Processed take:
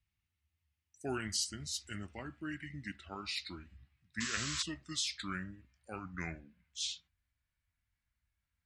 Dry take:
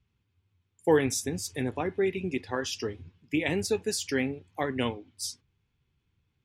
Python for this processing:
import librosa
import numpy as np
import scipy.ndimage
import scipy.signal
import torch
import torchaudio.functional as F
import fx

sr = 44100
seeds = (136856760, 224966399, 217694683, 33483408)

y = fx.speed_glide(x, sr, from_pct=85, to_pct=64)
y = fx.tone_stack(y, sr, knobs='5-5-5')
y = fx.spec_paint(y, sr, seeds[0], shape='noise', start_s=4.2, length_s=0.43, low_hz=990.0, high_hz=8000.0, level_db=-43.0)
y = y * 10.0 ** (3.0 / 20.0)